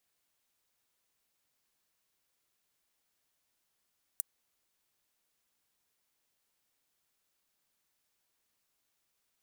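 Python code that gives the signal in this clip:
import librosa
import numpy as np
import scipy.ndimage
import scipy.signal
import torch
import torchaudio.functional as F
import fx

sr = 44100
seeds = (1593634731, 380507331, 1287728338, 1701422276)

y = fx.drum_hat(sr, length_s=0.24, from_hz=8700.0, decay_s=0.02)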